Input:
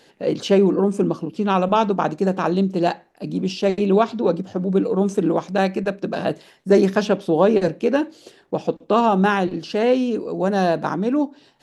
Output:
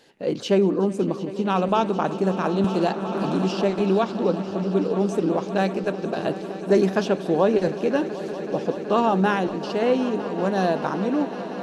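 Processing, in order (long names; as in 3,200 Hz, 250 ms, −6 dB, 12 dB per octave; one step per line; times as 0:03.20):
echo that builds up and dies away 188 ms, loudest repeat 5, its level −17 dB
0:02.64–0:04.03: multiband upward and downward compressor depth 70%
level −3.5 dB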